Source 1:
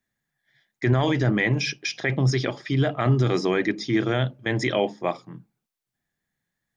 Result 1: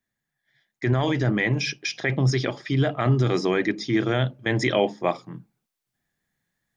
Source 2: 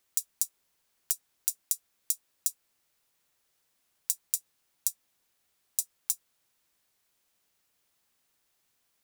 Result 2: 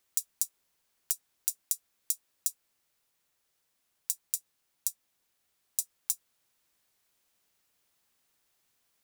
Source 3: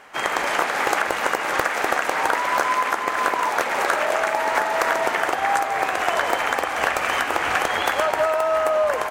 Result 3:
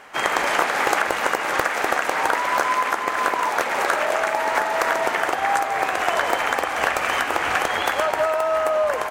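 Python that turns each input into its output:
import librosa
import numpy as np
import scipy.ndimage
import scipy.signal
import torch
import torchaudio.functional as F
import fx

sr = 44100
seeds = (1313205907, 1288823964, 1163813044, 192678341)

y = fx.rider(x, sr, range_db=10, speed_s=2.0)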